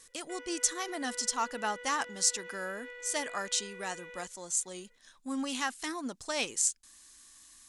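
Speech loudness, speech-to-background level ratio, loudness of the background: −33.0 LKFS, 13.5 dB, −46.5 LKFS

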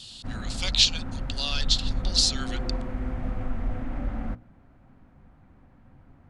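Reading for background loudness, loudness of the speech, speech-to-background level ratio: −34.0 LKFS, −24.5 LKFS, 9.5 dB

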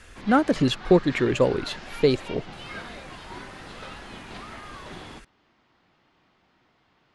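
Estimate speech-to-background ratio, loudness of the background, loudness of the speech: 17.0 dB, −40.0 LKFS, −23.0 LKFS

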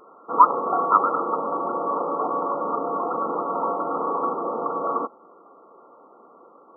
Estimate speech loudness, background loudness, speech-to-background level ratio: −20.5 LKFS, −25.5 LKFS, 5.0 dB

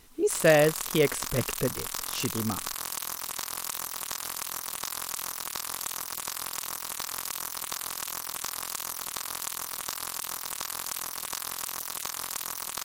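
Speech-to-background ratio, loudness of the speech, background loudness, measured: 6.0 dB, −26.5 LKFS, −32.5 LKFS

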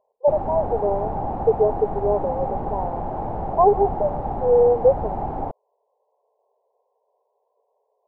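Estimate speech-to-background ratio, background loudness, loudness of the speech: 7.0 dB, −28.5 LKFS, −21.5 LKFS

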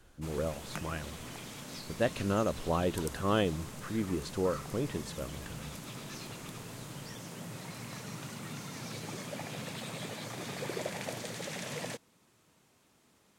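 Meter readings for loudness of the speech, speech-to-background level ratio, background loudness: −34.5 LKFS, 7.5 dB, −42.0 LKFS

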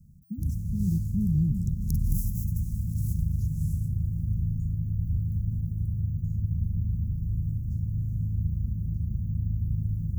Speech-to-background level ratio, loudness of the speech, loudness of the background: −1.0 dB, −31.0 LKFS, −30.0 LKFS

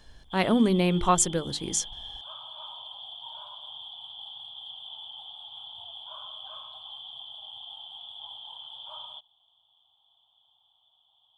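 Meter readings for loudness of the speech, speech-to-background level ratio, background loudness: −25.0 LKFS, 15.5 dB, −40.5 LKFS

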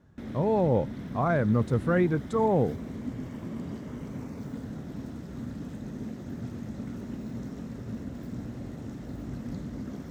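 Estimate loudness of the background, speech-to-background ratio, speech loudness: −38.5 LKFS, 12.0 dB, −26.5 LKFS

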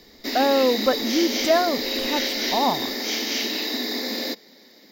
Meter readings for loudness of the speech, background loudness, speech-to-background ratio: −23.5 LKFS, −25.0 LKFS, 1.5 dB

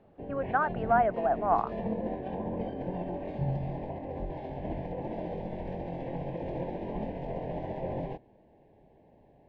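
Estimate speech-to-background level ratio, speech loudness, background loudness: 8.0 dB, −28.5 LKFS, −36.5 LKFS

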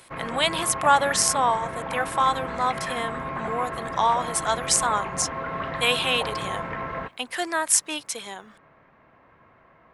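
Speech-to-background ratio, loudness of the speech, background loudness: 7.5 dB, −24.0 LKFS, −31.5 LKFS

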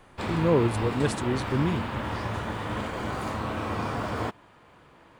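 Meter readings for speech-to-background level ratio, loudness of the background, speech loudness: 4.5 dB, −31.5 LKFS, −27.0 LKFS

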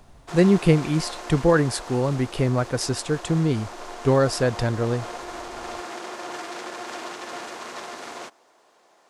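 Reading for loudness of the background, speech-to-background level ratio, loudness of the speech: −36.0 LKFS, 13.5 dB, −22.5 LKFS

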